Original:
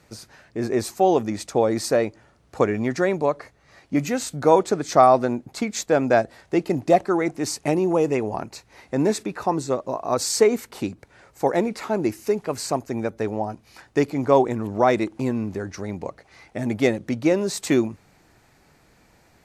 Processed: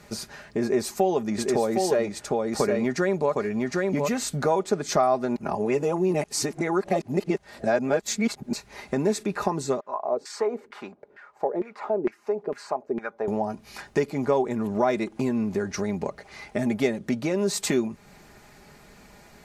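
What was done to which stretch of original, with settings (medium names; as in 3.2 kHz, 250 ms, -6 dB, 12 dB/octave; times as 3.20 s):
0.62–4.59 s: delay 760 ms -4.5 dB
5.36–8.53 s: reverse
9.80–13.28 s: LFO band-pass saw down 2.2 Hz 320–1900 Hz
whole clip: compression 2.5:1, threshold -32 dBFS; comb 4.9 ms, depth 51%; trim +5.5 dB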